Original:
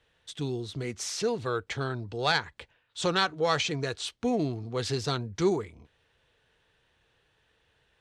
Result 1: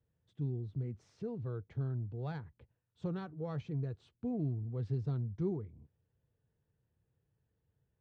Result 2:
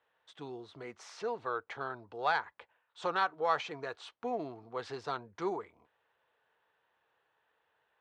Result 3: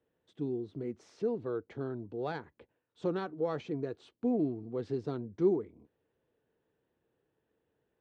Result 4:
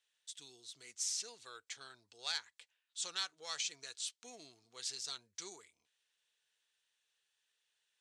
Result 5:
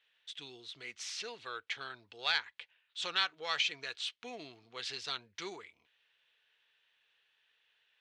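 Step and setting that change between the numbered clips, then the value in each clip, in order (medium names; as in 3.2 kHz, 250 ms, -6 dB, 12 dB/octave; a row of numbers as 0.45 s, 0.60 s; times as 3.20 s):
band-pass filter, frequency: 120 Hz, 960 Hz, 300 Hz, 7.7 kHz, 2.8 kHz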